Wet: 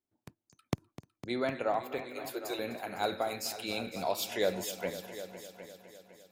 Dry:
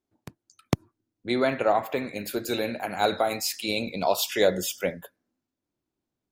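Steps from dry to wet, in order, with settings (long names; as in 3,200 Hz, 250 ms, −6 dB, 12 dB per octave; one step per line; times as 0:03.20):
0:01.98–0:02.59: Butterworth high-pass 290 Hz 72 dB per octave
on a send: echo machine with several playback heads 253 ms, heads all three, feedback 44%, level −16 dB
on the sum: level −8.5 dB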